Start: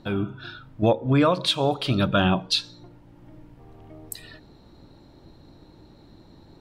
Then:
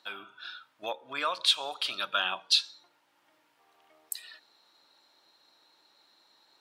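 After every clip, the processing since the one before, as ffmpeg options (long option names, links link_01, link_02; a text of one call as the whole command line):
ffmpeg -i in.wav -af "highpass=1400,equalizer=frequency=2000:width_type=o:width=0.77:gain=-2.5" out.wav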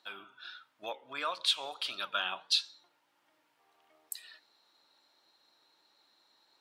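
ffmpeg -i in.wav -af "flanger=delay=2.3:depth=5.6:regen=88:speed=1.5:shape=triangular" out.wav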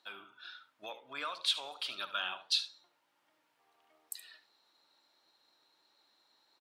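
ffmpeg -i in.wav -filter_complex "[0:a]acrossover=split=1100[link_01][link_02];[link_01]alimiter=level_in=12dB:limit=-24dB:level=0:latency=1,volume=-12dB[link_03];[link_03][link_02]amix=inputs=2:normalize=0,aecho=1:1:73:0.2,volume=-2.5dB" out.wav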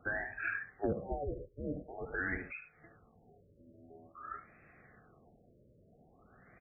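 ffmpeg -i in.wav -af "afftfilt=real='real(if(between(b,1,1008),(2*floor((b-1)/48)+1)*48-b,b),0)':imag='imag(if(between(b,1,1008),(2*floor((b-1)/48)+1)*48-b,b),0)*if(between(b,1,1008),-1,1)':win_size=2048:overlap=0.75,acompressor=threshold=-42dB:ratio=16,afftfilt=real='re*lt(b*sr/1024,610*pow(2700/610,0.5+0.5*sin(2*PI*0.48*pts/sr)))':imag='im*lt(b*sr/1024,610*pow(2700/610,0.5+0.5*sin(2*PI*0.48*pts/sr)))':win_size=1024:overlap=0.75,volume=16dB" out.wav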